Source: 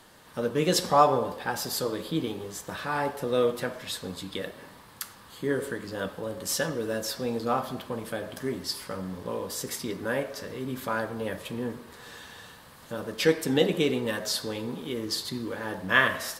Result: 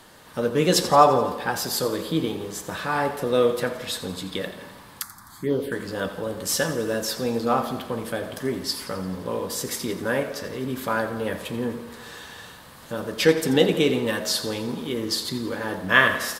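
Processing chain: feedback delay 86 ms, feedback 60%, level -14 dB; 5.02–5.72 s: touch-sensitive phaser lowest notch 430 Hz, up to 1.7 kHz, full sweep at -23.5 dBFS; trim +4.5 dB

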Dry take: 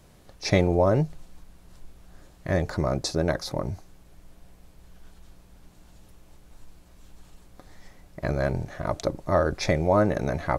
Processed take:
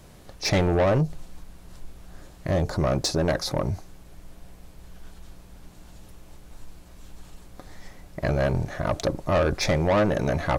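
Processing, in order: saturation -22 dBFS, distortion -9 dB; 0.97–2.81 s: dynamic bell 1.8 kHz, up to -7 dB, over -49 dBFS, Q 0.85; trim +5.5 dB

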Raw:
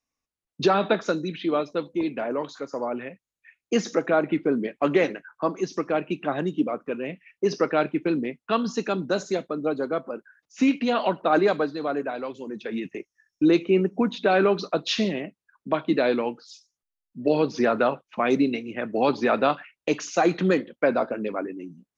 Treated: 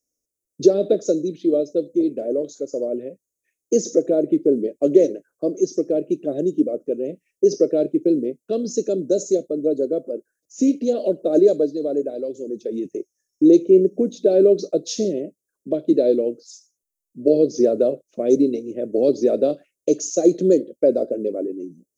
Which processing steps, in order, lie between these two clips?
FFT filter 210 Hz 0 dB, 360 Hz +10 dB, 600 Hz +7 dB, 890 Hz -27 dB, 2.7 kHz -17 dB, 4.5 kHz -2 dB, 6.5 kHz +12 dB; trim -1.5 dB

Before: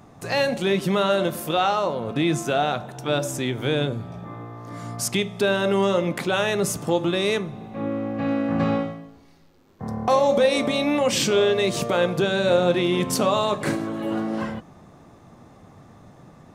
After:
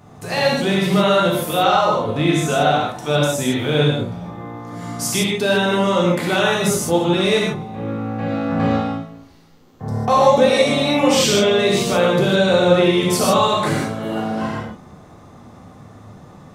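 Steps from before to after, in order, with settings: gated-style reverb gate 180 ms flat, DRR -4.5 dB

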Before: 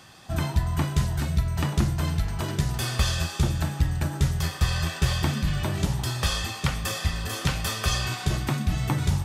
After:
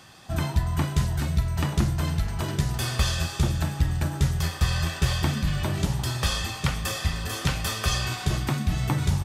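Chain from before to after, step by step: feedback delay 453 ms, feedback 56%, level -19.5 dB

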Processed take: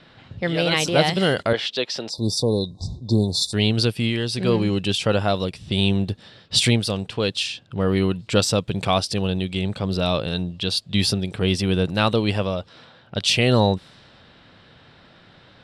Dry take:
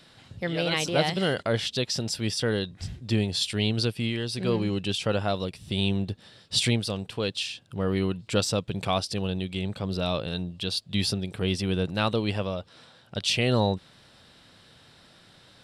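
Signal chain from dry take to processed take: 2.09–3.53 s: spectral selection erased 1.1–3.5 kHz; level-controlled noise filter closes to 2.8 kHz, open at -25 dBFS; 1.53–2.18 s: three-band isolator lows -20 dB, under 290 Hz, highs -17 dB, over 4.9 kHz; trim +6 dB

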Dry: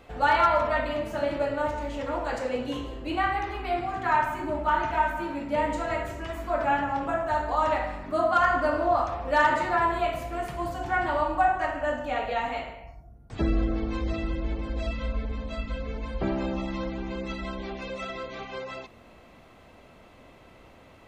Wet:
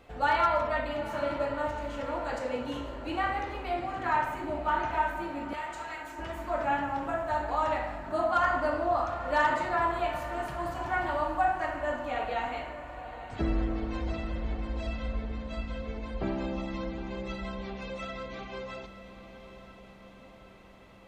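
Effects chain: 5.53–6.19 s: Bessel high-pass 1.8 kHz, order 2; echo that smears into a reverb 867 ms, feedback 56%, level -12.5 dB; trim -4 dB

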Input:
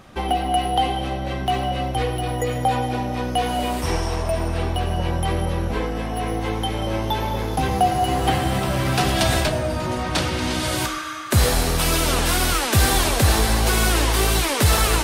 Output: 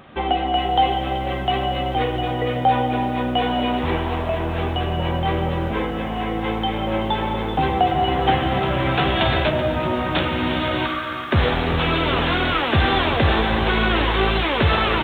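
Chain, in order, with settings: bass shelf 69 Hz -11 dB; early reflections 13 ms -10.5 dB, 49 ms -17.5 dB; resampled via 8 kHz; bit-crushed delay 381 ms, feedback 55%, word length 8-bit, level -13 dB; trim +2 dB

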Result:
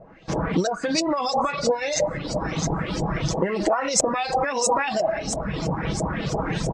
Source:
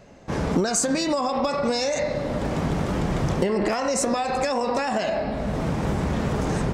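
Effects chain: treble shelf 5.2 kHz +6.5 dB; feedback echo behind a high-pass 664 ms, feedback 51%, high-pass 4.8 kHz, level -3 dB; LFO low-pass saw up 3 Hz 610–7100 Hz; reverb removal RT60 1.2 s; comb 6.2 ms, depth 40%; MP3 64 kbps 32 kHz

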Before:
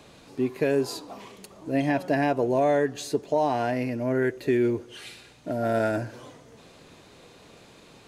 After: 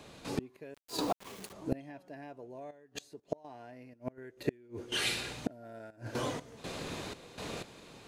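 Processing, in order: trance gate ".xx.x..xxxx.x" 61 bpm -12 dB; inverted gate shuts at -28 dBFS, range -34 dB; 0.74–1.53 s: word length cut 10-bit, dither none; trim +10.5 dB

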